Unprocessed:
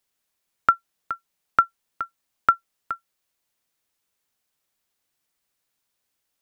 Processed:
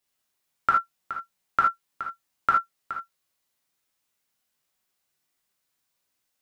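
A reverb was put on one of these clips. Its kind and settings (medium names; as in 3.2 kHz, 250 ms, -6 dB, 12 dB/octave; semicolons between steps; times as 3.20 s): gated-style reverb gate 100 ms flat, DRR -2.5 dB; trim -4.5 dB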